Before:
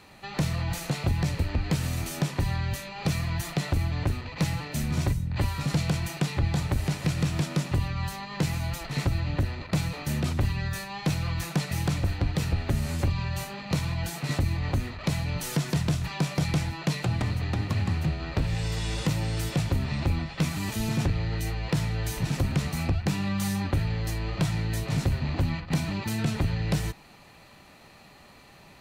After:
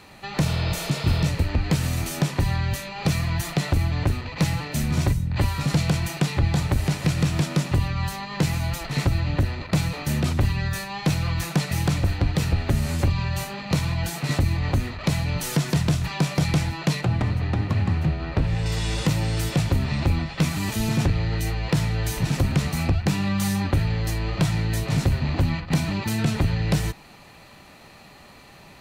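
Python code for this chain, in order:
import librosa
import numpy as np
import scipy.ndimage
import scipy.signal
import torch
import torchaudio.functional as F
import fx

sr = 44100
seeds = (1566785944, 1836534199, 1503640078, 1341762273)

y = fx.spec_repair(x, sr, seeds[0], start_s=0.48, length_s=0.78, low_hz=370.0, high_hz=5200.0, source='before')
y = fx.high_shelf(y, sr, hz=3800.0, db=-10.5, at=(17.01, 18.66))
y = y * librosa.db_to_amplitude(4.5)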